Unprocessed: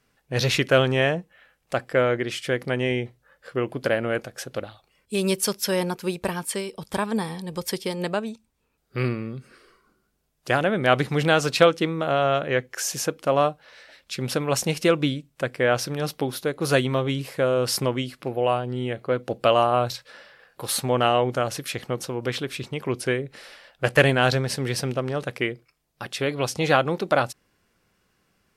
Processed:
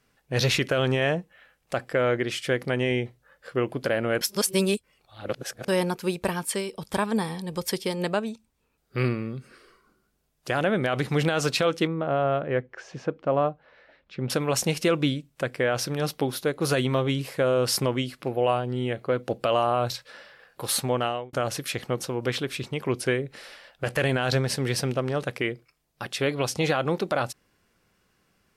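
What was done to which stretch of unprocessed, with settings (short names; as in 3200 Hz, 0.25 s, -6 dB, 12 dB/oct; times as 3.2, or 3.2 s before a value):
4.21–5.68 reverse
11.87–14.3 tape spacing loss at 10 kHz 40 dB
20.77–21.33 fade out
whole clip: limiter -12.5 dBFS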